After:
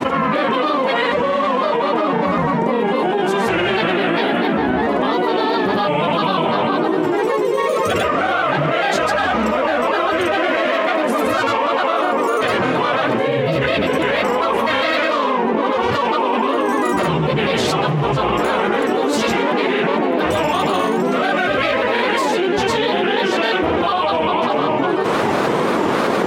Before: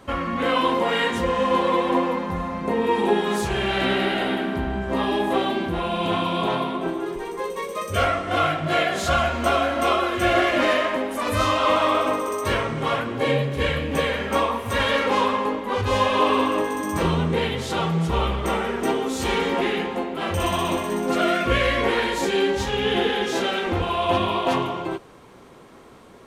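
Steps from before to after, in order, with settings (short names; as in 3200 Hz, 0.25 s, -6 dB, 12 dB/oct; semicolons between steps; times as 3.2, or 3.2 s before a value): HPF 180 Hz 12 dB/oct; bell 10000 Hz -9 dB 2 oct; notches 50/100/150/200/250/300/350/400 Hz; grains, pitch spread up and down by 3 st; fast leveller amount 100%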